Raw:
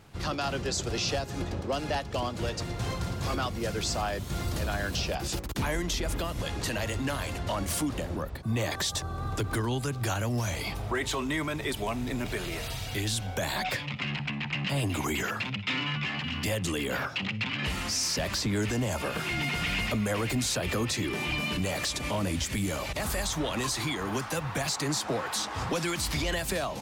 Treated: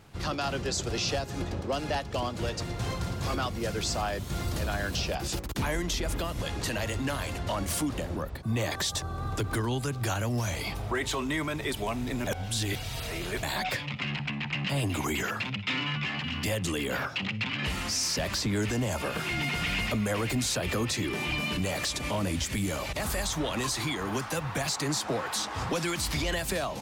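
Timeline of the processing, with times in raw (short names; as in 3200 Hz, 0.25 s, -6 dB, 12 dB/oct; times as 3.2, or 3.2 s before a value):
12.27–13.43 reverse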